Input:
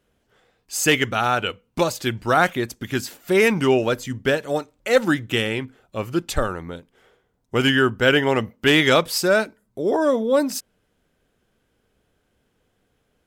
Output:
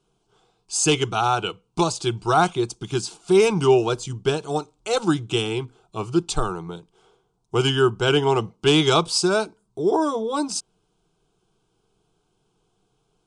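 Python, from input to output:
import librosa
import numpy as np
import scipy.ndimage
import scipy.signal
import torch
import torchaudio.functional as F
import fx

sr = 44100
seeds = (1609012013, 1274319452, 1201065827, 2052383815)

y = scipy.signal.sosfilt(scipy.signal.ellip(4, 1.0, 40, 9400.0, 'lowpass', fs=sr, output='sos'), x)
y = fx.fixed_phaser(y, sr, hz=370.0, stages=8)
y = y * librosa.db_to_amplitude(4.0)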